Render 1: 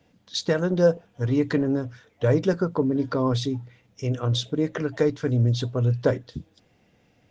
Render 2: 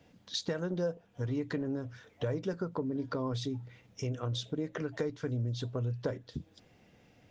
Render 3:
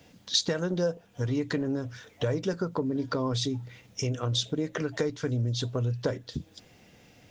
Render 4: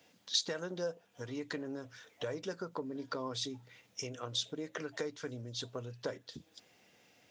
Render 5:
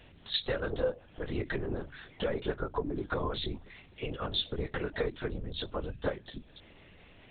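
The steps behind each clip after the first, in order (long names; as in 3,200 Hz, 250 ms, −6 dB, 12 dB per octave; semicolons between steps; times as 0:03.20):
downward compressor 3 to 1, threshold −35 dBFS, peak gain reduction 15.5 dB
high-shelf EQ 3,600 Hz +9.5 dB; level +5 dB
high-pass filter 490 Hz 6 dB per octave; level −6 dB
mains hum 50 Hz, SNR 23 dB; linear-prediction vocoder at 8 kHz whisper; level +6.5 dB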